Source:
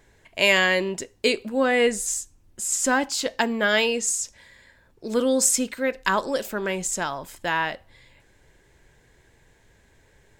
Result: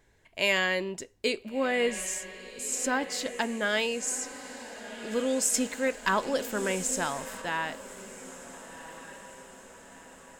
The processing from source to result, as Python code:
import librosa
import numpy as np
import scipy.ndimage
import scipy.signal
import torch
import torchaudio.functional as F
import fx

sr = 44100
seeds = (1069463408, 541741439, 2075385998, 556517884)

y = fx.echo_diffused(x, sr, ms=1419, feedback_pct=52, wet_db=-12.5)
y = fx.leveller(y, sr, passes=1, at=(5.54, 7.42))
y = y * 10.0 ** (-7.0 / 20.0)